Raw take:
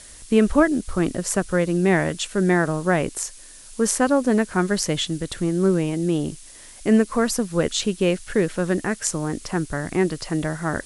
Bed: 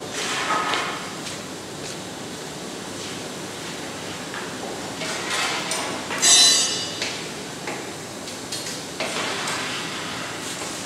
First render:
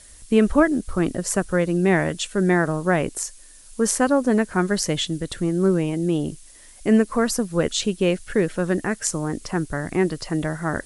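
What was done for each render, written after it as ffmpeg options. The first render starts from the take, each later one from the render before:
ffmpeg -i in.wav -af "afftdn=noise_reduction=6:noise_floor=-44" out.wav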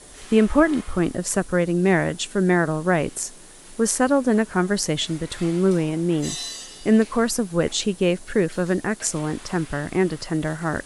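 ffmpeg -i in.wav -i bed.wav -filter_complex "[1:a]volume=-17.5dB[link_01];[0:a][link_01]amix=inputs=2:normalize=0" out.wav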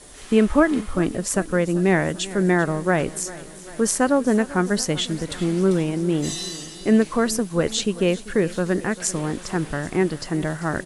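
ffmpeg -i in.wav -af "aecho=1:1:392|784|1176|1568|1960:0.126|0.0755|0.0453|0.0272|0.0163" out.wav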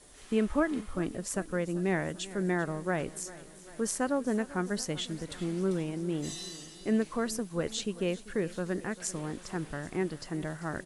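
ffmpeg -i in.wav -af "volume=-11dB" out.wav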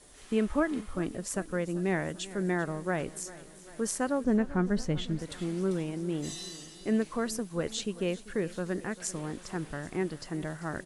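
ffmpeg -i in.wav -filter_complex "[0:a]asettb=1/sr,asplit=3[link_01][link_02][link_03];[link_01]atrim=end=4.244[link_04];[link_02]atrim=start=4.24:end=5.19,asetpts=PTS-STARTPTS,afade=type=in:duration=0.004:curve=qsin,afade=type=out:start_time=0.946:duration=0.004:curve=qsin,aemphasis=mode=reproduction:type=bsi[link_05];[link_03]atrim=start=5.186[link_06];[link_04][link_05]acrossfade=duration=0.004:curve1=hsin:curve2=qsin[link_07];[link_07][link_06]acrossfade=duration=0.004:curve1=qsin:curve2=hsin" out.wav

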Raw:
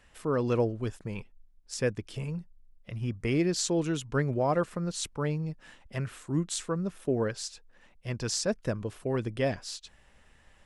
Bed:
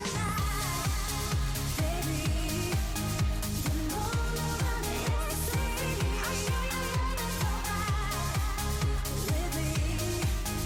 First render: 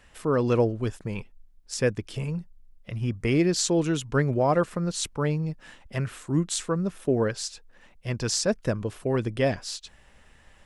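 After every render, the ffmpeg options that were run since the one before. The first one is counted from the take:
ffmpeg -i in.wav -af "volume=4.5dB" out.wav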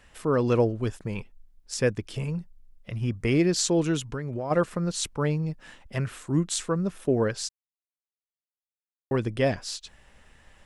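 ffmpeg -i in.wav -filter_complex "[0:a]asplit=3[link_01][link_02][link_03];[link_01]afade=type=out:start_time=4.1:duration=0.02[link_04];[link_02]acompressor=threshold=-27dB:ratio=16:attack=3.2:release=140:knee=1:detection=peak,afade=type=in:start_time=4.1:duration=0.02,afade=type=out:start_time=4.5:duration=0.02[link_05];[link_03]afade=type=in:start_time=4.5:duration=0.02[link_06];[link_04][link_05][link_06]amix=inputs=3:normalize=0,asplit=3[link_07][link_08][link_09];[link_07]atrim=end=7.49,asetpts=PTS-STARTPTS,afade=type=out:start_time=7.486:duration=0.004:curve=hsin[link_10];[link_08]atrim=start=7.49:end=9.11,asetpts=PTS-STARTPTS,volume=0[link_11];[link_09]atrim=start=9.11,asetpts=PTS-STARTPTS,afade=type=in:duration=0.004:curve=hsin[link_12];[link_10][link_11][link_12]concat=n=3:v=0:a=1" out.wav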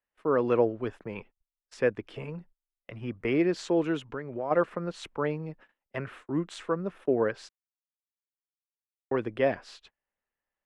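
ffmpeg -i in.wav -filter_complex "[0:a]agate=range=-31dB:threshold=-42dB:ratio=16:detection=peak,acrossover=split=260 2900:gain=0.224 1 0.0794[link_01][link_02][link_03];[link_01][link_02][link_03]amix=inputs=3:normalize=0" out.wav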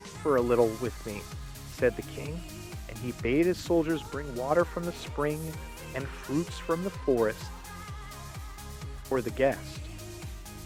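ffmpeg -i in.wav -i bed.wav -filter_complex "[1:a]volume=-11dB[link_01];[0:a][link_01]amix=inputs=2:normalize=0" out.wav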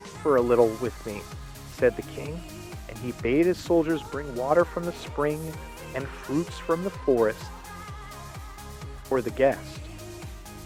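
ffmpeg -i in.wav -af "equalizer=frequency=660:width=0.4:gain=4.5" out.wav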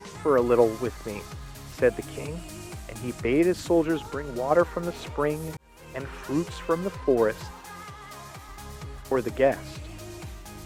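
ffmpeg -i in.wav -filter_complex "[0:a]asettb=1/sr,asplit=3[link_01][link_02][link_03];[link_01]atrim=end=1.824[link_04];[link_02]atrim=start=1.82:end=3.85,asetpts=PTS-STARTPTS,afade=type=in:duration=0.004:curve=qsin,afade=type=out:start_time=2.026:duration=0.004:curve=qsin,equalizer=frequency=8800:width=1.6:gain=6[link_05];[link_03]atrim=start=3.846[link_06];[link_04][link_05]acrossfade=duration=0.004:curve1=hsin:curve2=qsin[link_07];[link_07][link_06]acrossfade=duration=0.004:curve1=qsin:curve2=hsin,asettb=1/sr,asplit=3[link_08][link_09][link_10];[link_08]atrim=end=7.514[link_11];[link_09]atrim=start=7.51:end=8.49,asetpts=PTS-STARTPTS,afade=type=in:duration=0.004:curve=qsin,afade=type=out:start_time=0.976:duration=0.004:curve=qsin,highpass=frequency=170:poles=1[link_12];[link_10]atrim=start=8.486[link_13];[link_11][link_12]acrossfade=duration=0.004:curve1=hsin:curve2=qsin[link_14];[link_14][link_13]acrossfade=duration=0.004:curve1=qsin:curve2=hsin,asplit=2[link_15][link_16];[link_15]atrim=end=5.57,asetpts=PTS-STARTPTS,afade=type=out:start_time=5.566:duration=0.004:curve=hsin[link_17];[link_16]atrim=start=5.57,asetpts=PTS-STARTPTS,afade=type=in:duration=0.59[link_18];[link_17][link_18]concat=n=2:v=0:a=1" out.wav

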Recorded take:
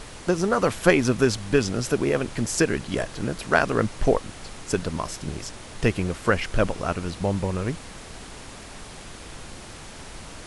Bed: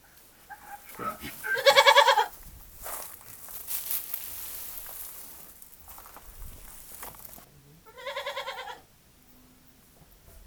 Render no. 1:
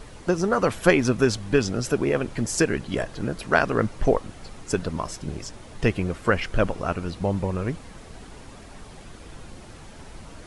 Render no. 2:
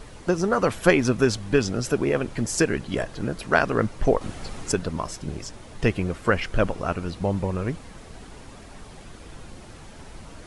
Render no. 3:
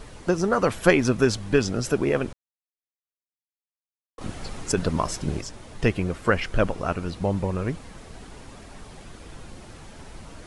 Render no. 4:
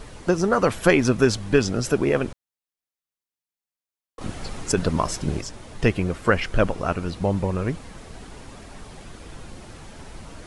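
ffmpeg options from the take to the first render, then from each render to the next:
ffmpeg -i in.wav -af "afftdn=noise_reduction=8:noise_floor=-41" out.wav
ffmpeg -i in.wav -filter_complex "[0:a]asettb=1/sr,asplit=3[link_01][link_02][link_03];[link_01]atrim=end=4.214[link_04];[link_02]atrim=start=4.21:end=4.72,asetpts=PTS-STARTPTS,afade=type=in:duration=0.004:curve=qsin,afade=type=out:start_time=0.506:duration=0.004:curve=qsin,acontrast=44[link_05];[link_03]atrim=start=4.716[link_06];[link_04][link_05]acrossfade=duration=0.004:curve1=hsin:curve2=qsin[link_07];[link_07][link_06]acrossfade=duration=0.004:curve1=qsin:curve2=hsin" out.wav
ffmpeg -i in.wav -filter_complex "[0:a]asplit=5[link_01][link_02][link_03][link_04][link_05];[link_01]atrim=end=2.33,asetpts=PTS-STARTPTS,afade=type=out:start_time=2.326:duration=0.004:curve=hsin[link_06];[link_02]atrim=start=2.33:end=4.18,asetpts=PTS-STARTPTS,volume=0[link_07];[link_03]atrim=start=4.18:end=4.772,asetpts=PTS-STARTPTS,afade=type=in:duration=0.004:curve=hsin[link_08];[link_04]atrim=start=4.768:end=5.412,asetpts=PTS-STARTPTS,volume=4.5dB[link_09];[link_05]atrim=start=5.408[link_10];[link_06][link_07][link_08]concat=n=3:v=0:a=1[link_11];[link_11][link_09]acrossfade=duration=0.004:curve1=hsin:curve2=hsin[link_12];[link_12][link_10]acrossfade=duration=0.004:curve1=hsin:curve2=hsin" out.wav
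ffmpeg -i in.wav -af "volume=2dB,alimiter=limit=-2dB:level=0:latency=1" out.wav

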